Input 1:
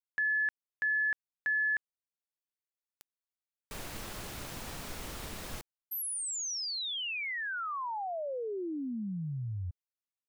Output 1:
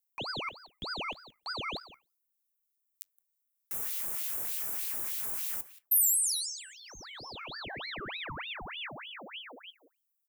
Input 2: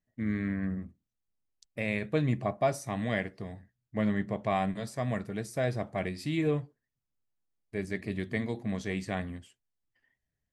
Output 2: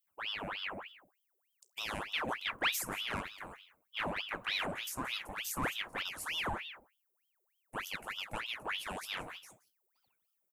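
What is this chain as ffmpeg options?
ffmpeg -i in.wav -filter_complex "[0:a]equalizer=frequency=4800:width=0.32:gain=-15,bandreject=frequency=50:width_type=h:width=6,bandreject=frequency=100:width_type=h:width=6,bandreject=frequency=150:width_type=h:width=6,asplit=2[link_01][link_02];[link_02]highpass=frequency=720:poles=1,volume=15dB,asoftclip=type=tanh:threshold=-18dB[link_03];[link_01][link_03]amix=inputs=2:normalize=0,lowpass=frequency=5100:poles=1,volume=-6dB,asplit=2[link_04][link_05];[link_05]adelay=174.9,volume=-15dB,highshelf=frequency=4000:gain=-3.94[link_06];[link_04][link_06]amix=inputs=2:normalize=0,flanger=delay=9.1:depth=9.4:regen=70:speed=0.35:shape=triangular,aexciter=amount=9.6:drive=7.7:freq=6500,aeval=exprs='val(0)*sin(2*PI*1800*n/s+1800*0.8/3.3*sin(2*PI*3.3*n/s))':channel_layout=same" out.wav

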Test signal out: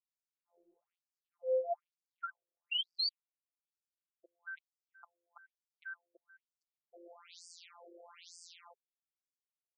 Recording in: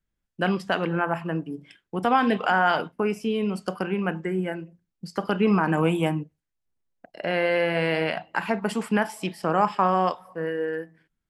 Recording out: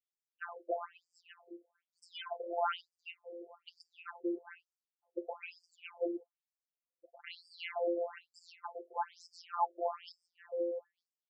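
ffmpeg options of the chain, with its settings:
ffmpeg -i in.wav -af "afftfilt=real='hypot(re,im)*cos(PI*b)':imag='0':win_size=1024:overlap=0.75,equalizer=frequency=1700:width=3.1:gain=-11,afftfilt=real='re*between(b*sr/1024,440*pow(6600/440,0.5+0.5*sin(2*PI*1.1*pts/sr))/1.41,440*pow(6600/440,0.5+0.5*sin(2*PI*1.1*pts/sr))*1.41)':imag='im*between(b*sr/1024,440*pow(6600/440,0.5+0.5*sin(2*PI*1.1*pts/sr))/1.41,440*pow(6600/440,0.5+0.5*sin(2*PI*1.1*pts/sr))*1.41)':win_size=1024:overlap=0.75,volume=-2.5dB" out.wav

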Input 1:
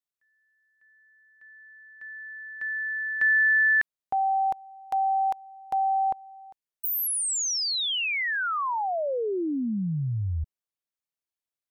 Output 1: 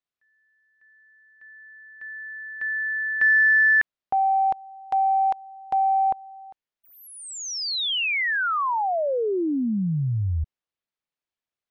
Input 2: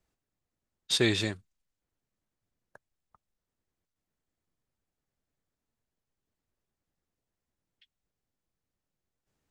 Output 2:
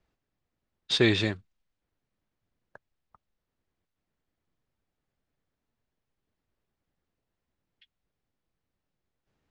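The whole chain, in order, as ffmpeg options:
ffmpeg -i in.wav -af "acontrast=60,lowpass=4100,volume=-2.5dB" out.wav

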